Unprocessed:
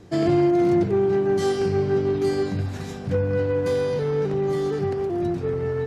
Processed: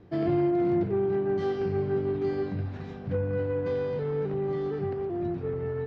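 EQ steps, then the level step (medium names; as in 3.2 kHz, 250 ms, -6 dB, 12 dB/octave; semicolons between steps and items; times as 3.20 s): distance through air 280 m; -5.5 dB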